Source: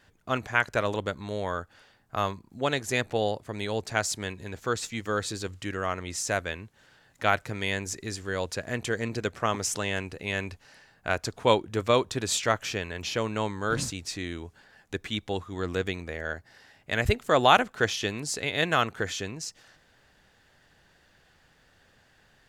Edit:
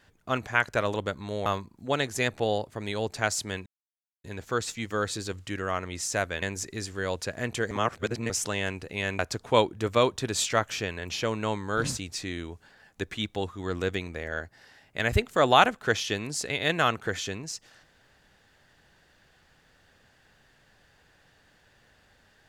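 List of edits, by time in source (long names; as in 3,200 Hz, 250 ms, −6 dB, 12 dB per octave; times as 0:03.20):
0:01.46–0:02.19: remove
0:04.39: splice in silence 0.58 s
0:06.57–0:07.72: remove
0:09.01–0:09.60: reverse
0:10.49–0:11.12: remove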